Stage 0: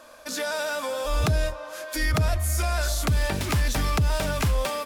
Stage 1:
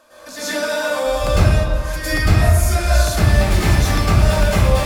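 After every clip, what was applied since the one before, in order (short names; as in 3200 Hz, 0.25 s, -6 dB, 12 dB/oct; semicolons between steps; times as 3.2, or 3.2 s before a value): reverb RT60 1.2 s, pre-delay 0.1 s, DRR -12.5 dB; gain -4.5 dB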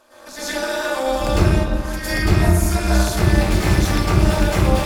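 AM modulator 260 Hz, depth 65%; gain +1.5 dB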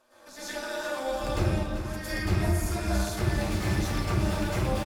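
flange 1.5 Hz, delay 7.3 ms, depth 3.5 ms, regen -38%; on a send: echo 0.387 s -10.5 dB; on the sum: gain -7 dB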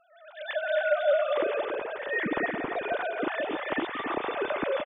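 sine-wave speech; loudspeakers at several distances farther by 58 m -11 dB, 95 m -6 dB; gain -2.5 dB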